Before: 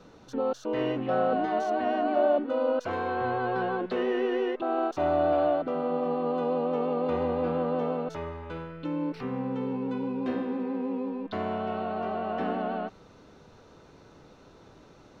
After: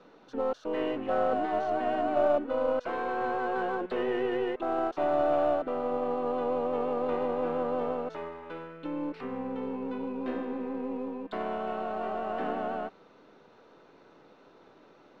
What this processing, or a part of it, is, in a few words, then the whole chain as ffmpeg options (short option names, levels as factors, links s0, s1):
crystal radio: -af "highpass=260,lowpass=3500,aeval=exprs='if(lt(val(0),0),0.708*val(0),val(0))':c=same"